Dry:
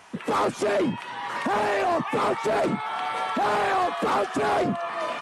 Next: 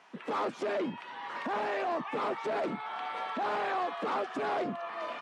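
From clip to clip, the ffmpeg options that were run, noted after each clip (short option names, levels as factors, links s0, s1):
-filter_complex "[0:a]acrossover=split=160 5500:gain=0.0794 1 0.178[s0][s1][s2];[s0][s1][s2]amix=inputs=3:normalize=0,volume=0.376"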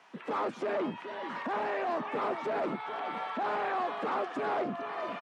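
-filter_complex "[0:a]acrossover=split=260|960|2700[s0][s1][s2][s3];[s3]alimiter=level_in=15.8:limit=0.0631:level=0:latency=1:release=98,volume=0.0631[s4];[s0][s1][s2][s4]amix=inputs=4:normalize=0,asplit=2[s5][s6];[s6]adelay=425.7,volume=0.316,highshelf=f=4000:g=-9.58[s7];[s5][s7]amix=inputs=2:normalize=0"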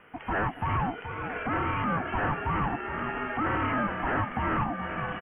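-af "asuperstop=centerf=5500:order=20:qfactor=0.71,aeval=exprs='val(0)*sin(2*PI*500*n/s)':c=same,volume=2.24"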